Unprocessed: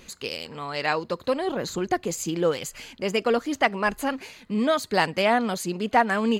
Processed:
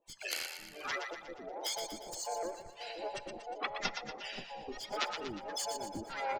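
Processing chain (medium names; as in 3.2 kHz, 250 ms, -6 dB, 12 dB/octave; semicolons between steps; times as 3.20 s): every band turned upside down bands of 1 kHz; spectral gate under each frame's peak -10 dB strong; frequency weighting ITU-R 468; low-pass that closes with the level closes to 2.6 kHz, closed at -16.5 dBFS; Chebyshev shaper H 3 -8 dB, 4 -34 dB, 5 -43 dB, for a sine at -7.5 dBFS; harmonic tremolo 1.5 Hz, depth 100%, crossover 420 Hz; two-band feedback delay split 780 Hz, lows 527 ms, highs 119 ms, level -6.5 dB; on a send at -19 dB: reverberation RT60 1.3 s, pre-delay 4 ms; on the sum: harmony voices -7 st -5 dB, +3 st -13 dB; trim +9 dB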